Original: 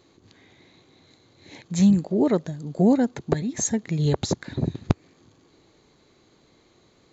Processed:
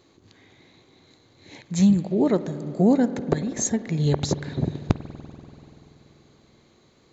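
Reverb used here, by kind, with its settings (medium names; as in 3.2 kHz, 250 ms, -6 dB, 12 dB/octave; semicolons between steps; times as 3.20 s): spring tank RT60 3.5 s, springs 48 ms, chirp 25 ms, DRR 12 dB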